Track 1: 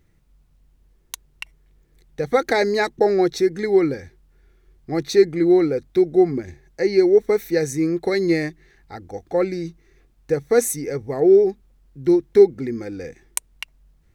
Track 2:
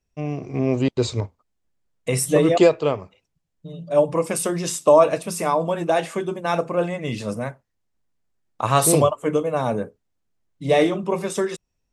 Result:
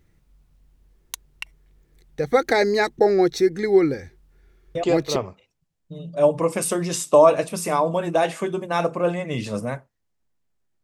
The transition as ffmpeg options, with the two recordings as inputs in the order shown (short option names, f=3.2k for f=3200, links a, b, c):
-filter_complex "[1:a]asplit=2[a][b];[0:a]apad=whole_dur=10.83,atrim=end=10.83,atrim=end=5.162[c];[b]atrim=start=2.898:end=8.57[d];[a]atrim=start=2.49:end=2.9,asetpts=PTS-STARTPTS,volume=-7dB,afade=t=in:d=0.004:c=hsin,afade=t=out:st=0.406:d=0.004:c=hsin,adelay=4750[e];[c][d]acrossfade=d=0.004:c1=hsin:c2=hsin[f];[f][e]amix=inputs=2:normalize=0"